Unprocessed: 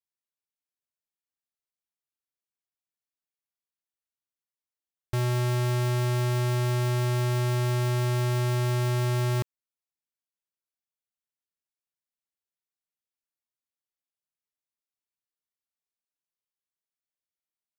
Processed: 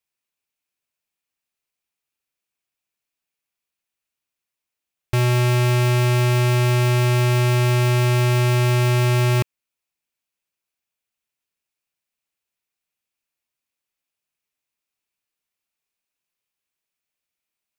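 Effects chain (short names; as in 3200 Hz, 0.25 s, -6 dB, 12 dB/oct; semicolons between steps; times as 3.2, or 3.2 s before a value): bell 2500 Hz +7.5 dB 0.37 oct; gain +8 dB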